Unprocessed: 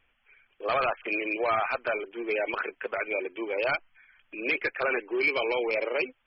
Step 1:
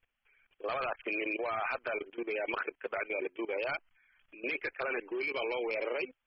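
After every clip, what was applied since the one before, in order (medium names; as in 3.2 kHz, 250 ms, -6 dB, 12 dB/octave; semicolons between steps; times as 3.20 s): level held to a coarse grid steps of 17 dB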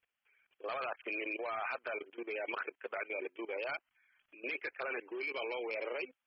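high-pass 300 Hz 6 dB/octave; trim -3.5 dB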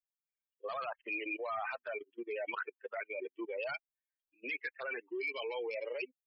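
expander on every frequency bin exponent 2; trim +4.5 dB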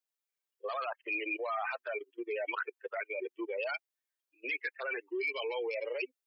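Chebyshev high-pass 340 Hz, order 3; trim +3.5 dB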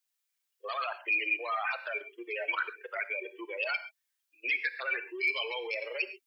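tilt shelf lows -8 dB, about 830 Hz; gated-style reverb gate 150 ms flat, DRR 11 dB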